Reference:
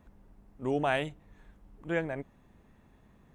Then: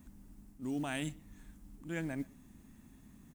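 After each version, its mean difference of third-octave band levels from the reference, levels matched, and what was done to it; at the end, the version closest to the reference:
8.0 dB: drawn EQ curve 140 Hz 0 dB, 270 Hz +7 dB, 450 Hz −10 dB, 3,700 Hz +1 dB, 7,800 Hz +13 dB
reversed playback
downward compressor 6 to 1, threshold −35 dBFS, peak gain reduction 10 dB
reversed playback
noise that follows the level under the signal 29 dB
far-end echo of a speakerphone 120 ms, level −22 dB
level +1 dB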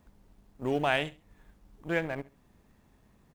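3.0 dB: mu-law and A-law mismatch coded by A
dynamic equaliser 2,900 Hz, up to +5 dB, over −49 dBFS, Q 1
repeating echo 68 ms, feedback 24%, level −20 dB
in parallel at 0 dB: downward compressor, threshold −43 dBFS, peak gain reduction 18.5 dB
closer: second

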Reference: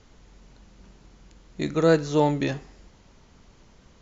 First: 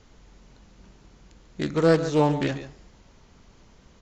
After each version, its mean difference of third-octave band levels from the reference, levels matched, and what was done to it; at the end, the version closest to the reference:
2.0 dB: single-tap delay 142 ms −12.5 dB
highs frequency-modulated by the lows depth 0.21 ms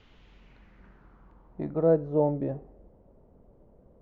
6.5 dB: dynamic equaliser 420 Hz, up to −5 dB, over −32 dBFS, Q 0.96
low-pass filter sweep 3,000 Hz → 570 Hz, 0:00.32–0:01.98
level −4 dB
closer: first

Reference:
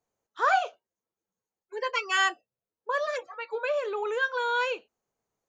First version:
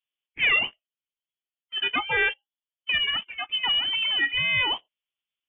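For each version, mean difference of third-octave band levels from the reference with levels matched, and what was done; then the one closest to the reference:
13.5 dB: leveller curve on the samples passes 2
voice inversion scrambler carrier 3,500 Hz
level −2.5 dB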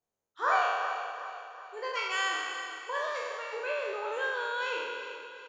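6.5 dB: peak hold with a decay on every bin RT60 1.79 s
on a send: repeating echo 368 ms, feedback 49%, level −11 dB
on the sum: level −8.5 dB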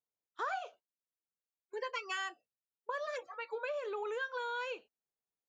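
2.0 dB: noise gate −46 dBFS, range −14 dB
downward compressor 5 to 1, threshold −31 dBFS, peak gain reduction 11.5 dB
level −4.5 dB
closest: third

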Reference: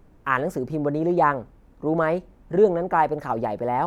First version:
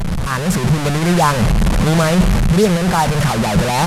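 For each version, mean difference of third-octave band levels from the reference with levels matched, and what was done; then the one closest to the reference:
15.0 dB: linear delta modulator 64 kbit/s, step −17 dBFS
low shelf with overshoot 230 Hz +6 dB, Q 3
automatic gain control
level −1 dB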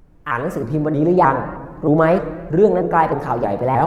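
4.0 dB: low-shelf EQ 140 Hz +5.5 dB
automatic gain control gain up to 9.5 dB
rectangular room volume 1,100 cubic metres, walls mixed, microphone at 0.69 metres
pitch modulation by a square or saw wave saw up 3.2 Hz, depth 160 cents
level −1 dB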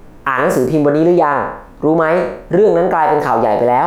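5.0 dB: peak hold with a decay on every bin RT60 0.54 s
parametric band 69 Hz −6.5 dB 2.9 octaves
in parallel at +0.5 dB: downward compressor, threshold −26 dBFS, peak gain reduction 13 dB
on the sum: boost into a limiter +12 dB
level −2.5 dB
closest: second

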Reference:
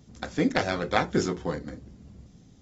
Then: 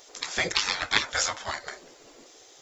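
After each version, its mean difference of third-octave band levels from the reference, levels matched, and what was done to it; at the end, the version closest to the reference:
12.0 dB: gate on every frequency bin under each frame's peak −15 dB weak
spectral tilt +1.5 dB per octave
in parallel at −2 dB: downward compressor, threshold −44 dBFS, peak gain reduction 18 dB
on the sum: level +7 dB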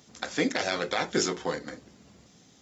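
5.5 dB: high-pass filter 940 Hz 6 dB per octave
dynamic equaliser 1,200 Hz, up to −5 dB, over −41 dBFS, Q 0.92
brickwall limiter −20.5 dBFS, peak gain reduction 11 dB
level +8 dB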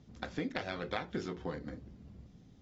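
4.0 dB: low-pass filter 4,400 Hz 12 dB per octave
dynamic equaliser 3,200 Hz, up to +5 dB, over −44 dBFS, Q 1
downward compressor 4 to 1, threshold −30 dBFS, peak gain reduction 11.5 dB
level −4.5 dB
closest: third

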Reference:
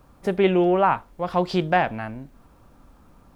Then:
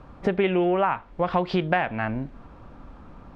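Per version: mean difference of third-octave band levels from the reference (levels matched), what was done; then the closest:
4.0 dB: low-pass filter 3,100 Hz 12 dB per octave
dynamic equaliser 2,400 Hz, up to +6 dB, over −36 dBFS, Q 0.77
downward compressor 5 to 1, threshold −28 dBFS, peak gain reduction 14 dB
level +7.5 dB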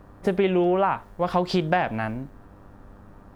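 3.0 dB: downward compressor 6 to 1, threshold −22 dBFS, peak gain reduction 8.5 dB
hum with harmonics 100 Hz, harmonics 19, −57 dBFS −4 dB per octave
one half of a high-frequency compander decoder only
level +4 dB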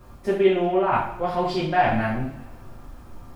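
6.0 dB: low-shelf EQ 83 Hz +6 dB
reversed playback
downward compressor 6 to 1, threshold −25 dBFS, peak gain reduction 11 dB
reversed playback
coupled-rooms reverb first 0.51 s, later 1.7 s, from −18 dB, DRR −6.5 dB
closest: second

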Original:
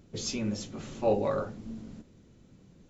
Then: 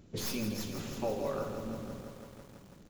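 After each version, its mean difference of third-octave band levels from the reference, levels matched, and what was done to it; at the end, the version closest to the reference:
11.0 dB: stylus tracing distortion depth 0.12 ms
downward compressor 5 to 1, threshold −32 dBFS, peak gain reduction 11 dB
on a send: repeating echo 65 ms, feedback 30%, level −11.5 dB
on the sum: feedback echo at a low word length 165 ms, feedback 80%, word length 9 bits, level −8 dB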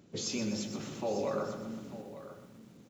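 7.5 dB: brickwall limiter −25.5 dBFS, peak gain reduction 10.5 dB
high-pass filter 140 Hz 12 dB per octave
single-tap delay 894 ms −14 dB
feedback echo at a low word length 124 ms, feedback 55%, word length 10 bits, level −8 dB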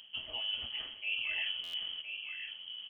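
15.0 dB: reversed playback
downward compressor 5 to 1, threshold −38 dBFS, peak gain reduction 15.5 dB
reversed playback
single-tap delay 1,015 ms −7 dB
voice inversion scrambler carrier 3,200 Hz
buffer that repeats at 0:01.63, samples 512, times 8
level +3 dB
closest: second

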